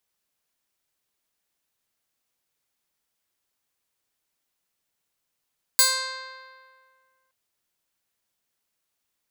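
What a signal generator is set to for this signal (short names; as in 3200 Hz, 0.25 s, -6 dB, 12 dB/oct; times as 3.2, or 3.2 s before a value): plucked string C5, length 1.52 s, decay 1.96 s, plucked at 0.18, bright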